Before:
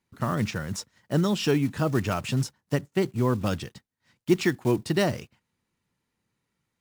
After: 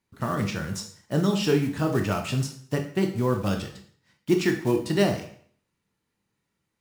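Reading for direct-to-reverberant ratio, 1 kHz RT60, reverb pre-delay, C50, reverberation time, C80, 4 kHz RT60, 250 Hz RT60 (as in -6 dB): 3.5 dB, 0.55 s, 7 ms, 9.0 dB, 0.55 s, 13.0 dB, 0.50 s, 0.55 s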